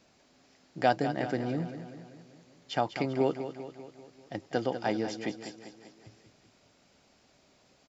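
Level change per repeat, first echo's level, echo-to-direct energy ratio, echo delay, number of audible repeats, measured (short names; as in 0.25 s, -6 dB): -5.0 dB, -10.5 dB, -9.0 dB, 0.196 s, 5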